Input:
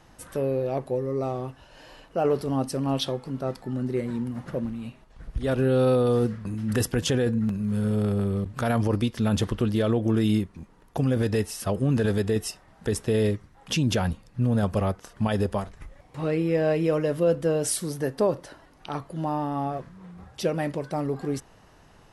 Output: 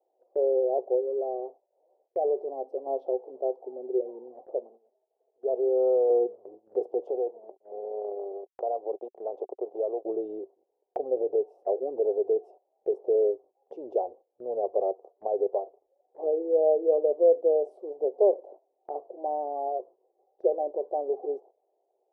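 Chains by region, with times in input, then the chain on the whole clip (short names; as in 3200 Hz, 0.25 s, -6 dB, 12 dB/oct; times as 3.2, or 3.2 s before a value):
1–2.87 expander -47 dBFS + compressor 1.5:1, threshold -31 dBFS
4.56–6.1 HPF 440 Hz 6 dB/oct + comb 4.6 ms, depth 43%
7.07–10.05 weighting filter A + backlash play -30 dBFS + three-band squash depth 70%
whole clip: elliptic band-pass 380–760 Hz, stop band 50 dB; gate -51 dBFS, range -15 dB; gain +3 dB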